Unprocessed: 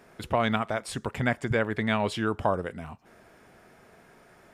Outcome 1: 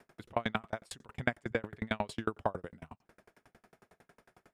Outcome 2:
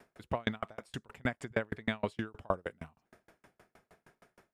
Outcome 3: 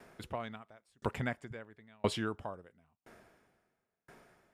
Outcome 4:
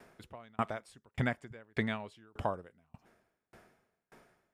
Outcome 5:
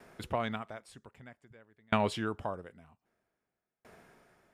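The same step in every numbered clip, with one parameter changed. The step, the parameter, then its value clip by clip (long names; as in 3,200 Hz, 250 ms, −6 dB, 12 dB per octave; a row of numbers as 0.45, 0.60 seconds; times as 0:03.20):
tremolo with a ramp in dB, speed: 11, 6.4, 0.98, 1.7, 0.52 Hertz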